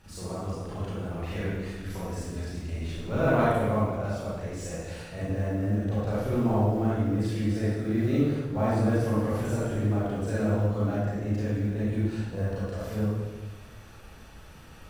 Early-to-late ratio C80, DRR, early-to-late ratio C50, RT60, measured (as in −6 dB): −0.5 dB, −9.5 dB, −4.5 dB, 1.2 s